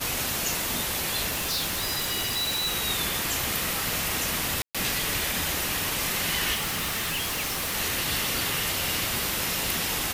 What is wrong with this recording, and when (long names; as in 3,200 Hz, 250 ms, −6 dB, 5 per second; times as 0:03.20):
surface crackle 40 per second −33 dBFS
0:01.29–0:02.75: clipping −24 dBFS
0:04.62–0:04.75: drop-out 126 ms
0:06.53–0:07.75: clipping −25.5 dBFS